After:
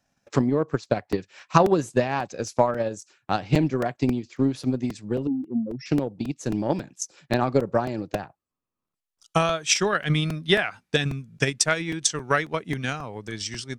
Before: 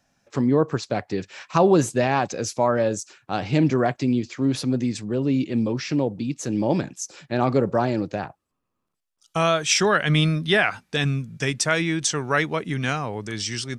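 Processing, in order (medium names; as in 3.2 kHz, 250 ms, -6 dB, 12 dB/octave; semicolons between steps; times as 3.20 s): 5.27–5.86 s: spectral contrast enhancement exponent 3; transient shaper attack +11 dB, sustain -4 dB; crackling interface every 0.27 s, samples 128, repeat, from 0.85 s; trim -6 dB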